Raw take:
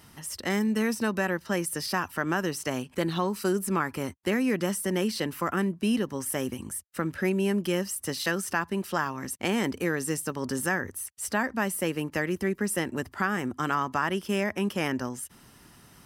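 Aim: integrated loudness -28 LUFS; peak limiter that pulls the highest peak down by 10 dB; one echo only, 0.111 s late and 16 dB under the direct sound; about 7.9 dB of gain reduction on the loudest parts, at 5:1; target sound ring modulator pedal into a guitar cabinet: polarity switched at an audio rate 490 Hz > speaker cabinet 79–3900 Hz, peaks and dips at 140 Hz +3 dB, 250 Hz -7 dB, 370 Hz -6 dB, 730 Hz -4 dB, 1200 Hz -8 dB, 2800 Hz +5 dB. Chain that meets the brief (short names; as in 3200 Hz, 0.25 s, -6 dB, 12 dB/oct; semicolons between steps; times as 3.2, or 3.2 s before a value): compressor 5:1, threshold -31 dBFS; limiter -26 dBFS; echo 0.111 s -16 dB; polarity switched at an audio rate 490 Hz; speaker cabinet 79–3900 Hz, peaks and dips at 140 Hz +3 dB, 250 Hz -7 dB, 370 Hz -6 dB, 730 Hz -4 dB, 1200 Hz -8 dB, 2800 Hz +5 dB; gain +11 dB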